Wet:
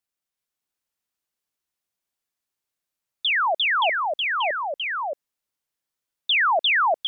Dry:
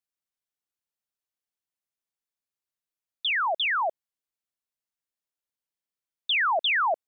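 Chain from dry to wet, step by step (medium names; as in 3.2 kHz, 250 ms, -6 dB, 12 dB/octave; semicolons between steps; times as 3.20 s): ever faster or slower copies 380 ms, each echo -1 st, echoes 2; trim +4 dB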